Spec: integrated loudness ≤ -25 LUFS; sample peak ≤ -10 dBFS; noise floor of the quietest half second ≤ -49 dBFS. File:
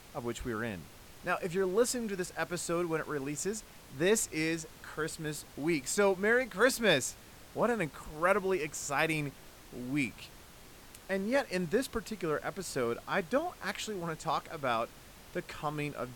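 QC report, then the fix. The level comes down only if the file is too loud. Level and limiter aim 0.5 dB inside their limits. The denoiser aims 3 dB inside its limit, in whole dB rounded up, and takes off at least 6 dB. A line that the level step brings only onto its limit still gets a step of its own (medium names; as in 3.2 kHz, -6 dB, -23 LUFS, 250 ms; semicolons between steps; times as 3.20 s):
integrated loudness -33.0 LUFS: pass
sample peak -13.0 dBFS: pass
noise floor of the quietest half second -53 dBFS: pass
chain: none needed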